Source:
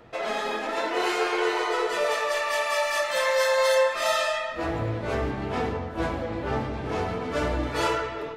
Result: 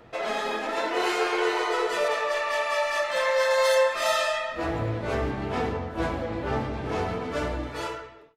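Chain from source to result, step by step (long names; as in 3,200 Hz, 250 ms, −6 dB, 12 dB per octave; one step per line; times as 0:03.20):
fade-out on the ending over 1.24 s
0:02.08–0:03.51: low-pass filter 3,900 Hz 6 dB per octave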